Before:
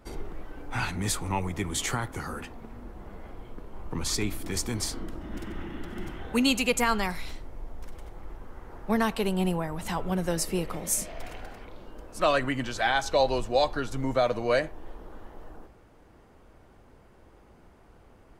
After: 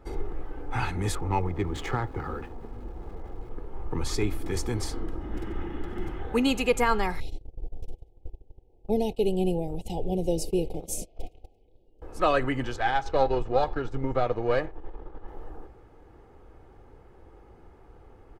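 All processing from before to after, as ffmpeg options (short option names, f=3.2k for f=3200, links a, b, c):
-filter_complex "[0:a]asettb=1/sr,asplit=3[a][b][c];[a]atrim=end=1.154[d];[b]atrim=start=1.15:end=3.51,asetpts=PTS-STARTPTS,afade=t=in:d=0.004:c=qsin,afade=t=out:st=2.356:d=0.004:c=qsin,adynamicsmooth=sensitivity=4:basefreq=1.5k,aeval=exprs='val(0)*gte(abs(val(0)),0.00282)':c=same[e];[c]atrim=start=3.506[f];[d][e]acrossfade=d=0.004:c1=hsin:c2=qsin[g];[g][f]acrossfade=d=0.004:c1=qsin:c2=hsin,asettb=1/sr,asplit=3[h][i][j];[h]atrim=end=7.204[k];[i]atrim=start=7.2:end=12.02,asetpts=PTS-STARTPTS,afade=t=in:d=0.004:c=qsin,afade=t=out:st=4.816:d=0.004:c=qsin,asuperstop=centerf=1400:order=8:qfactor=0.74,agate=range=-21dB:threshold=-36dB:ratio=16:release=100:detection=peak[l];[j]atrim=start=12.016[m];[k][l]acrossfade=d=0.004:c1=hsin:c2=qsin[n];[n][m]acrossfade=d=0.004:c1=qsin:c2=hsin,asettb=1/sr,asplit=3[o][p][q];[o]atrim=end=12.764[r];[p]atrim=start=12.76:end=15.28,asetpts=PTS-STARTPTS,afade=t=in:d=0.004:c=qsin,afade=t=out:st=2.516:d=0.004:c=qsin,aeval=exprs='if(lt(val(0),0),0.447*val(0),val(0))':c=same,adynamicsmooth=sensitivity=1:basefreq=6.2k[s];[q]atrim=start=15.276[t];[r][s]acrossfade=d=0.004:c1=hsin:c2=qsin[u];[u][t]acrossfade=d=0.004:c1=qsin:c2=hsin,highshelf=f=2.4k:g=-11,aecho=1:1:2.4:0.44,volume=2.5dB"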